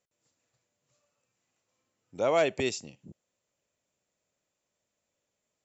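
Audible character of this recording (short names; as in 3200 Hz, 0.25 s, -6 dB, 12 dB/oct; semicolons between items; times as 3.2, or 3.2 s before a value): noise floor -84 dBFS; spectral tilt -4.0 dB/oct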